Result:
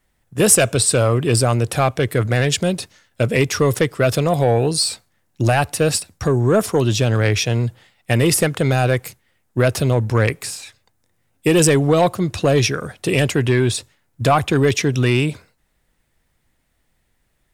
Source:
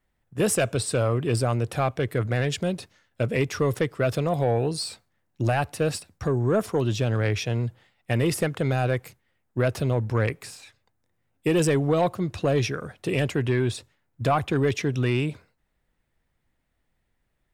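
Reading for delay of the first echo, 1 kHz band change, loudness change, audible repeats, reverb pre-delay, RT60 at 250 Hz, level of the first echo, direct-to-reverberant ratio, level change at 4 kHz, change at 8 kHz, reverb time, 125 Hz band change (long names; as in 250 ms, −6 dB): no echo audible, +7.5 dB, +8.0 dB, no echo audible, no reverb audible, no reverb audible, no echo audible, no reverb audible, +11.0 dB, +14.0 dB, no reverb audible, +7.0 dB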